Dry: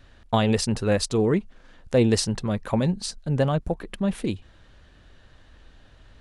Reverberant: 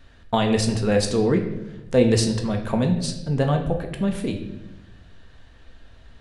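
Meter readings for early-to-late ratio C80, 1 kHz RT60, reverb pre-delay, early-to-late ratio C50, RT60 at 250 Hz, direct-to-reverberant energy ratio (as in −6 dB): 10.5 dB, 0.80 s, 4 ms, 8.5 dB, 1.3 s, 3.0 dB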